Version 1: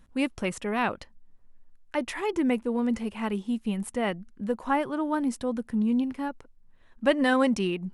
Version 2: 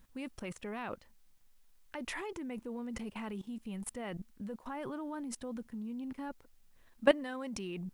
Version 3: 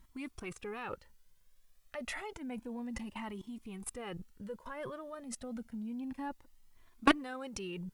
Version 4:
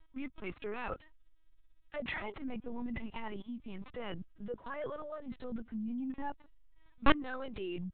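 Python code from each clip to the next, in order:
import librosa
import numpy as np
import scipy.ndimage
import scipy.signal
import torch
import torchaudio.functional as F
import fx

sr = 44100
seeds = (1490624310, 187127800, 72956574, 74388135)

y1 = fx.level_steps(x, sr, step_db=20)
y1 = fx.dmg_noise_colour(y1, sr, seeds[0], colour='white', level_db=-77.0)
y2 = fx.cheby_harmonics(y1, sr, harmonics=(3, 7), levels_db=(-21, -29), full_scale_db=-10.5)
y2 = fx.comb_cascade(y2, sr, direction='rising', hz=0.3)
y2 = y2 * librosa.db_to_amplitude(10.5)
y3 = fx.lpc_vocoder(y2, sr, seeds[1], excitation='pitch_kept', order=10)
y3 = y3 * librosa.db_to_amplitude(2.5)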